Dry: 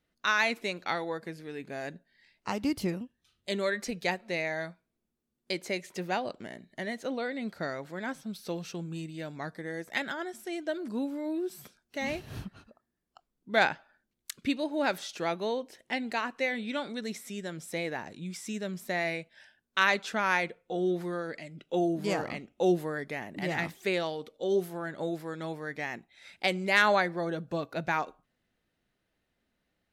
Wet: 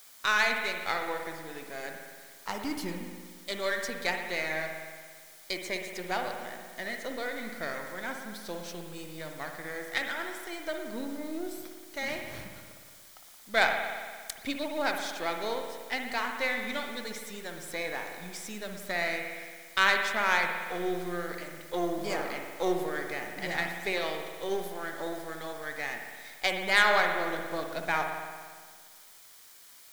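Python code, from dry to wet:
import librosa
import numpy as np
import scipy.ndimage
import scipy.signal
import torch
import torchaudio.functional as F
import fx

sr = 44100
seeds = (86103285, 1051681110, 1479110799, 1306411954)

p1 = np.where(x < 0.0, 10.0 ** (-7.0 / 20.0) * x, x)
p2 = fx.rev_spring(p1, sr, rt60_s=1.7, pass_ms=(57,), chirp_ms=70, drr_db=3.5)
p3 = fx.quant_dither(p2, sr, seeds[0], bits=8, dither='triangular')
p4 = p2 + (p3 * 10.0 ** (-5.0 / 20.0))
p5 = fx.low_shelf(p4, sr, hz=480.0, db=-10.0)
y = fx.notch(p5, sr, hz=2700.0, q=10.0)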